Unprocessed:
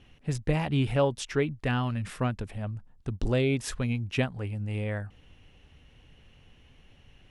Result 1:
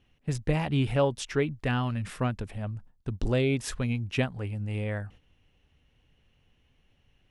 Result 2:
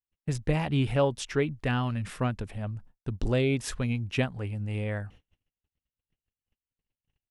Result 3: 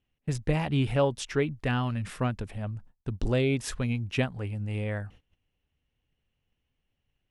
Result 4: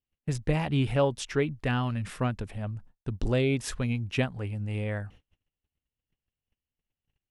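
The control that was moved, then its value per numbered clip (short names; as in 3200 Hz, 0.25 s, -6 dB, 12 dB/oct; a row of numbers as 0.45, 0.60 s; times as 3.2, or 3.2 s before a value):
gate, range: -10, -49, -23, -37 dB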